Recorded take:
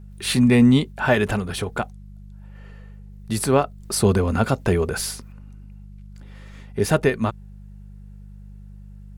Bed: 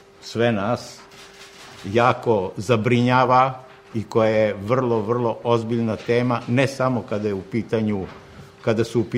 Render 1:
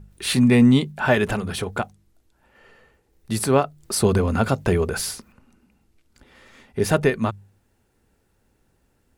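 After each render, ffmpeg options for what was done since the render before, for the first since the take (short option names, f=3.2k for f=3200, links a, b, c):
-af "bandreject=f=50:t=h:w=4,bandreject=f=100:t=h:w=4,bandreject=f=150:t=h:w=4,bandreject=f=200:t=h:w=4"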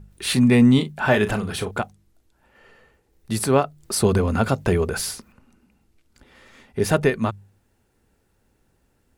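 -filter_complex "[0:a]asettb=1/sr,asplit=3[a][b][c];[a]atrim=end=0.744[d];[b]atrim=start=0.74:end=1.71,asetpts=PTS-STARTPTS,afade=t=in:d=0.004:c=qsin,afade=t=out:st=0.966:d=0.004:c=qsin,asplit=2[e][f];[f]adelay=38,volume=-11dB[g];[e][g]amix=inputs=2:normalize=0,atrim=end_sample=42777[h];[c]atrim=start=1.706[i];[d][h]acrossfade=d=0.004:c1=hsin:c2=qsin[j];[j][i]acrossfade=d=0.004:c1=qsin:c2=hsin"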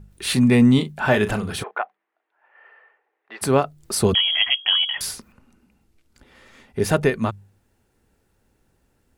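-filter_complex "[0:a]asplit=3[a][b][c];[a]afade=t=out:st=1.62:d=0.02[d];[b]highpass=f=490:w=0.5412,highpass=f=490:w=1.3066,equalizer=f=520:t=q:w=4:g=-5,equalizer=f=760:t=q:w=4:g=3,equalizer=f=1.1k:t=q:w=4:g=3,equalizer=f=1.8k:t=q:w=4:g=5,lowpass=f=2.5k:w=0.5412,lowpass=f=2.5k:w=1.3066,afade=t=in:st=1.62:d=0.02,afade=t=out:st=3.41:d=0.02[e];[c]afade=t=in:st=3.41:d=0.02[f];[d][e][f]amix=inputs=3:normalize=0,asettb=1/sr,asplit=3[g][h][i];[g]atrim=end=4.144[j];[h]atrim=start=4.14:end=5.01,asetpts=PTS-STARTPTS,afade=t=in:d=0.004:c=qsin,afade=t=out:st=0.866:d=0.004:c=qsin,lowpass=f=2.9k:t=q:w=0.5098,lowpass=f=2.9k:t=q:w=0.6013,lowpass=f=2.9k:t=q:w=0.9,lowpass=f=2.9k:t=q:w=2.563,afreqshift=-3400[k];[i]atrim=start=5.006[l];[j][k]acrossfade=d=0.004:c1=hsin:c2=qsin[m];[m][l]acrossfade=d=0.004:c1=qsin:c2=hsin"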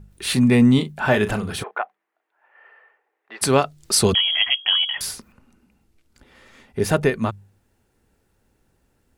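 -filter_complex "[0:a]asettb=1/sr,asplit=3[a][b][c];[a]atrim=end=3.414[d];[b]atrim=start=3.41:end=4.13,asetpts=PTS-STARTPTS,afade=t=in:d=0.004:c=qsin,afade=t=out:st=0.716:d=0.004:c=qsin,equalizer=f=4.9k:t=o:w=2.6:g=8.5[e];[c]atrim=start=4.126[f];[d][e]acrossfade=d=0.004:c1=hsin:c2=qsin[g];[g][f]acrossfade=d=0.004:c1=qsin:c2=hsin"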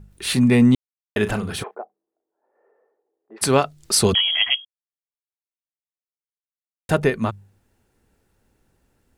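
-filter_complex "[0:a]asplit=3[a][b][c];[a]afade=t=out:st=1.74:d=0.02[d];[b]lowpass=f=420:t=q:w=1.6,afade=t=in:st=1.74:d=0.02,afade=t=out:st=3.36:d=0.02[e];[c]afade=t=in:st=3.36:d=0.02[f];[d][e][f]amix=inputs=3:normalize=0,asplit=5[g][h][i][j][k];[g]atrim=end=0.75,asetpts=PTS-STARTPTS,afade=t=out:st=0.746:d=0.004:c=hsin[l];[h]atrim=start=0.75:end=1.16,asetpts=PTS-STARTPTS,volume=0[m];[i]atrim=start=1.16:end=4.65,asetpts=PTS-STARTPTS,afade=t=in:d=0.004:c=hsin,afade=t=out:st=3.486:d=0.004:c=hsin[n];[j]atrim=start=4.65:end=6.89,asetpts=PTS-STARTPTS,volume=0[o];[k]atrim=start=6.89,asetpts=PTS-STARTPTS,afade=t=in:d=0.004:c=hsin[p];[l][m][n][o][p]concat=n=5:v=0:a=1"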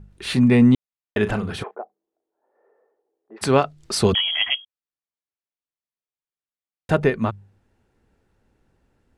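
-af "aemphasis=mode=reproduction:type=50fm"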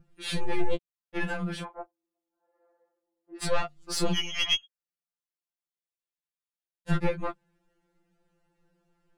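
-af "aeval=exprs='(tanh(3.98*val(0)+0.6)-tanh(0.6))/3.98':c=same,afftfilt=real='re*2.83*eq(mod(b,8),0)':imag='im*2.83*eq(mod(b,8),0)':win_size=2048:overlap=0.75"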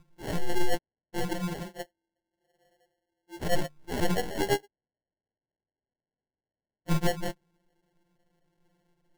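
-af "acrusher=samples=36:mix=1:aa=0.000001"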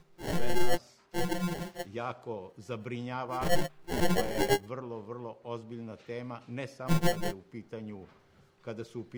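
-filter_complex "[1:a]volume=-20dB[a];[0:a][a]amix=inputs=2:normalize=0"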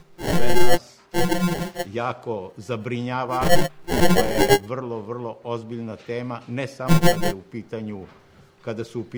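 -af "volume=10.5dB"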